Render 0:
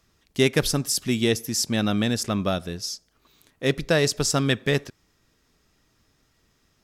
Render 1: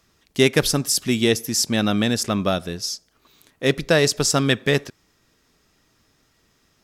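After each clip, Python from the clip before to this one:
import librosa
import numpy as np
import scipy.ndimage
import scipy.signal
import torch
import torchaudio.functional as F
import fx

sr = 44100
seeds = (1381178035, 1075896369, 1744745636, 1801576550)

y = fx.low_shelf(x, sr, hz=110.0, db=-6.0)
y = y * librosa.db_to_amplitude(4.0)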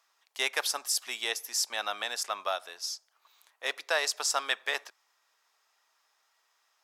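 y = fx.ladder_highpass(x, sr, hz=700.0, resonance_pct=40)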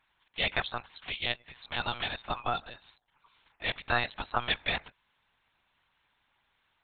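y = fx.spec_quant(x, sr, step_db=30)
y = fx.lpc_monotone(y, sr, seeds[0], pitch_hz=120.0, order=10)
y = y * librosa.db_to_amplitude(1.5)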